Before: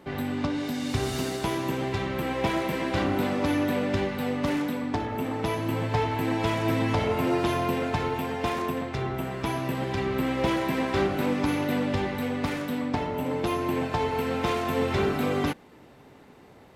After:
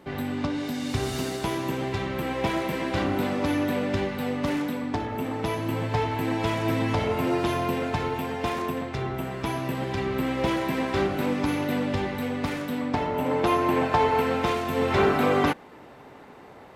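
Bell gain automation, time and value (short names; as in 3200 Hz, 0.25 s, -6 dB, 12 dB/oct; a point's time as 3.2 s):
bell 1000 Hz 2.9 oct
12.67 s 0 dB
13.43 s +7.5 dB
14.18 s +7.5 dB
14.69 s -1.5 dB
15.01 s +8 dB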